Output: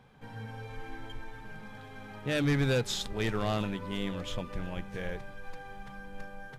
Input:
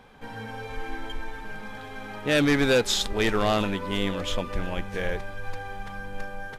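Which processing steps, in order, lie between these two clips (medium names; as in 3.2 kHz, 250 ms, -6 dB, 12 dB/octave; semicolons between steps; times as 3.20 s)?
peaking EQ 130 Hz +13 dB 0.79 oct; de-hum 49.4 Hz, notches 3; trim -9 dB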